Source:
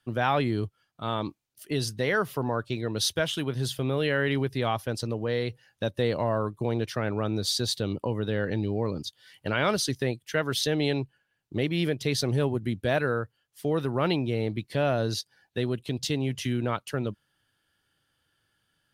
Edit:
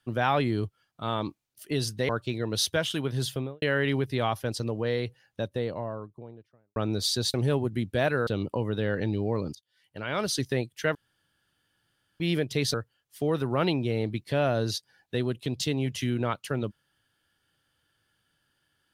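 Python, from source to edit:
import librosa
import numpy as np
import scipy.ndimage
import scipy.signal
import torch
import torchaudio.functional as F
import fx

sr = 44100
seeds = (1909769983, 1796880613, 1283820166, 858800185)

y = fx.studio_fade_out(x, sr, start_s=3.73, length_s=0.32)
y = fx.studio_fade_out(y, sr, start_s=5.22, length_s=1.97)
y = fx.edit(y, sr, fx.cut(start_s=2.09, length_s=0.43),
    fx.fade_in_from(start_s=9.05, length_s=0.84, curve='qua', floor_db=-19.0),
    fx.room_tone_fill(start_s=10.45, length_s=1.25),
    fx.move(start_s=12.24, length_s=0.93, to_s=7.77), tone=tone)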